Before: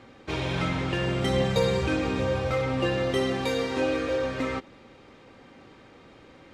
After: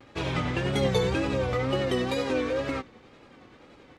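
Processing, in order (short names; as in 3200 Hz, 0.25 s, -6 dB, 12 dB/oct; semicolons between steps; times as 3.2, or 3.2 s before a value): granular stretch 0.61×, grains 0.191 s; wow and flutter 96 cents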